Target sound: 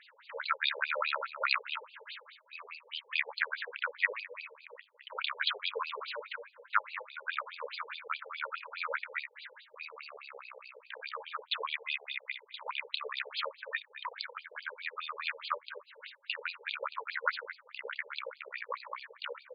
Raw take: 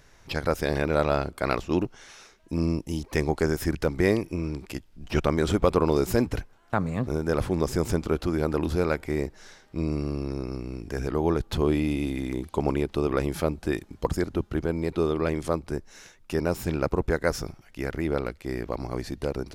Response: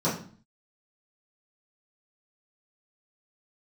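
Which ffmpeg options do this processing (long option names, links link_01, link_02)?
-filter_complex "[0:a]asuperstop=centerf=730:order=4:qfactor=2.1,asplit=2[link_01][link_02];[link_02]adelay=29,volume=-9dB[link_03];[link_01][link_03]amix=inputs=2:normalize=0,aecho=1:1:244:0.178,acrossover=split=110|1000[link_04][link_05][link_06];[link_04]aeval=exprs='0.0266*(abs(mod(val(0)/0.0266+3,4)-2)-1)':channel_layout=same[link_07];[link_05]acompressor=threshold=-39dB:ratio=10[link_08];[link_07][link_08][link_06]amix=inputs=3:normalize=0,highshelf=frequency=3200:gain=7.5,afftfilt=real='re*between(b*sr/1024,590*pow(3500/590,0.5+0.5*sin(2*PI*4.8*pts/sr))/1.41,590*pow(3500/590,0.5+0.5*sin(2*PI*4.8*pts/sr))*1.41)':imag='im*between(b*sr/1024,590*pow(3500/590,0.5+0.5*sin(2*PI*4.8*pts/sr))/1.41,590*pow(3500/590,0.5+0.5*sin(2*PI*4.8*pts/sr))*1.41)':win_size=1024:overlap=0.75,volume=5.5dB"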